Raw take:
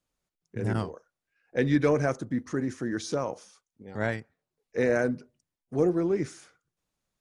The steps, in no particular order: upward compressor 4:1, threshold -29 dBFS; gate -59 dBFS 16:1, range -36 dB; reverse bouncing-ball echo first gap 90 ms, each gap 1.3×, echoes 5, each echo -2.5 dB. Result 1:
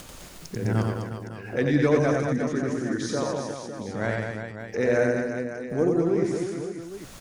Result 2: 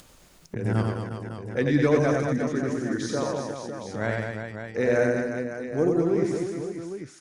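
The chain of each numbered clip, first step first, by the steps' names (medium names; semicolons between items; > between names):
upward compressor > gate > reverse bouncing-ball echo; gate > reverse bouncing-ball echo > upward compressor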